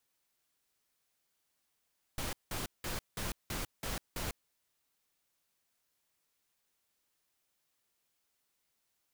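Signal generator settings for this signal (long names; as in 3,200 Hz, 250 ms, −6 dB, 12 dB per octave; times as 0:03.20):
noise bursts pink, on 0.15 s, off 0.18 s, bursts 7, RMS −37.5 dBFS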